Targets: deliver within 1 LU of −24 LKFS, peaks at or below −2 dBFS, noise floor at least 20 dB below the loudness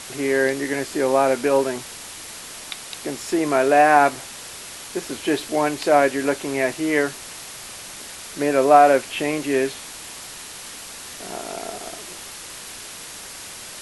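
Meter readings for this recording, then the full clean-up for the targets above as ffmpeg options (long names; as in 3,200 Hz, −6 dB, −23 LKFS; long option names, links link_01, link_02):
background noise floor −37 dBFS; target noise floor −40 dBFS; integrated loudness −20.0 LKFS; sample peak −2.0 dBFS; target loudness −24.0 LKFS
→ -af "afftdn=noise_reduction=6:noise_floor=-37"
-af "volume=-4dB"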